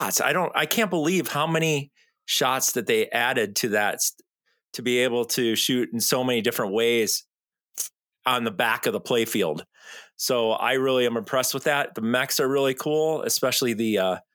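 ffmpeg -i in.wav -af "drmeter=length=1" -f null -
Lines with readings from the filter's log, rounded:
Channel 1: DR: 14.5
Overall DR: 14.5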